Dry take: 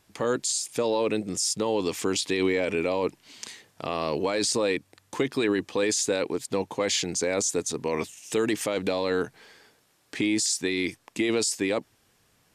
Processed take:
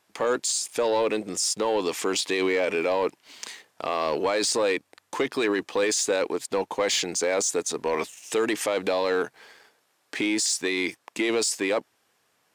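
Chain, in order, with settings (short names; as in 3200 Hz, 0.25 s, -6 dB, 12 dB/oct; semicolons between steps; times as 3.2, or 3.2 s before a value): HPF 380 Hz 6 dB/oct; bell 890 Hz +5 dB 2.9 oct; sample leveller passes 1; gain -2.5 dB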